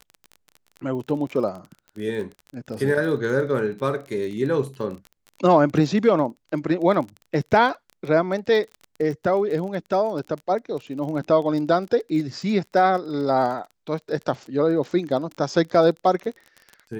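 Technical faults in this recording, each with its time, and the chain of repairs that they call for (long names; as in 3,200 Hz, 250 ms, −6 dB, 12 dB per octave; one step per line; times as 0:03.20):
surface crackle 26 per second −31 dBFS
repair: click removal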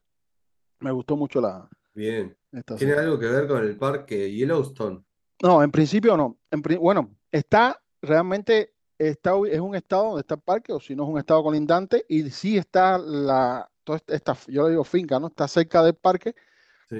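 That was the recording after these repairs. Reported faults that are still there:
none of them is left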